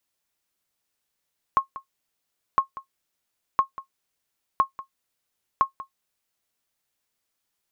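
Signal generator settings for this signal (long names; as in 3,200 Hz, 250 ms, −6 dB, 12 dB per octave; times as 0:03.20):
ping with an echo 1,080 Hz, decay 0.11 s, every 1.01 s, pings 5, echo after 0.19 s, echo −17 dB −9.5 dBFS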